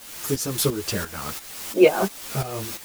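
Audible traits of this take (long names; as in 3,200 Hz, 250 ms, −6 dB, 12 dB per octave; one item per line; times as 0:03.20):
a quantiser's noise floor 6 bits, dither triangular
tremolo saw up 2.9 Hz, depth 75%
a shimmering, thickened sound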